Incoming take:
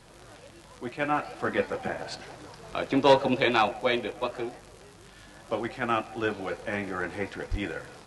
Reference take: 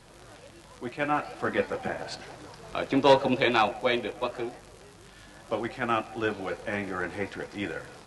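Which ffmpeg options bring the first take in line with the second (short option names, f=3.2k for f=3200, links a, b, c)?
-filter_complex "[0:a]asplit=3[a][b][c];[a]afade=t=out:st=7.5:d=0.02[d];[b]highpass=f=140:w=0.5412,highpass=f=140:w=1.3066,afade=t=in:st=7.5:d=0.02,afade=t=out:st=7.62:d=0.02[e];[c]afade=t=in:st=7.62:d=0.02[f];[d][e][f]amix=inputs=3:normalize=0"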